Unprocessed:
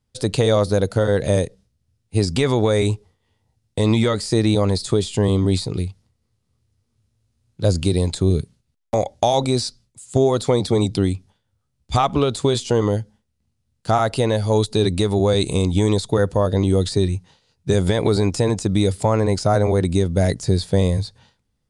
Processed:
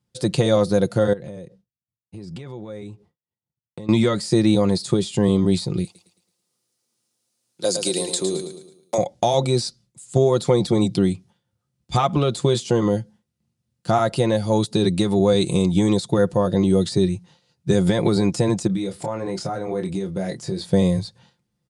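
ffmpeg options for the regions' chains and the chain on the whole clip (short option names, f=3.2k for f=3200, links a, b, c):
-filter_complex "[0:a]asettb=1/sr,asplit=3[a][b][c];[a]atrim=end=1.134[d];[b]atrim=start=1.13:end=3.89,asetpts=PTS-STARTPTS,afade=t=in:d=0.004:c=qsin,afade=t=out:st=2.756:d=0.004:c=qsin,agate=range=-33dB:threshold=-52dB:ratio=3:release=100:detection=peak,highshelf=f=3.8k:g=-11,acompressor=threshold=-32dB:ratio=6:attack=3.2:release=140:knee=1:detection=peak[e];[c]atrim=start=3.886[f];[d][e]acrossfade=d=0.004:c1=hsin:c2=qsin[g];[g][f]acrossfade=d=0.004:c1=qsin:c2=hsin,asettb=1/sr,asplit=3[h][i][j];[h]atrim=end=5.844[k];[i]atrim=start=5.84:end=8.98,asetpts=PTS-STARTPTS,afade=t=in:d=0.004:c=qsin,afade=t=out:st=3.136:d=0.004:c=qsin,highpass=180,bass=f=250:g=-15,treble=f=4k:g=11,aecho=1:1:109|218|327|436|545:0.422|0.177|0.0744|0.0312|0.0131,atrim=end_sample=138474[l];[j]atrim=start=8.976[m];[k][l]acrossfade=d=0.004:c1=hsin:c2=qsin[n];[n][m]acrossfade=d=0.004:c1=qsin:c2=hsin,asettb=1/sr,asplit=3[o][p][q];[o]atrim=end=18.674[r];[p]atrim=start=18.67:end=20.65,asetpts=PTS-STARTPTS,afade=t=in:d=0.004:c=qsin,afade=t=out:st=1.976:d=0.004:c=qsin,bass=f=250:g=-7,treble=f=4k:g=-5,acompressor=threshold=-22dB:ratio=10:attack=3.2:release=140:knee=1:detection=peak,asplit=2[s][t];[t]adelay=26,volume=-6dB[u];[s][u]amix=inputs=2:normalize=0,atrim=end_sample=87318[v];[q]atrim=start=20.646[w];[r][v]acrossfade=d=0.004:c1=hsin:c2=qsin[x];[x][w]acrossfade=d=0.004:c1=qsin:c2=hsin,highpass=130,lowshelf=f=200:g=9,aecho=1:1:5.7:0.54,volume=-3dB"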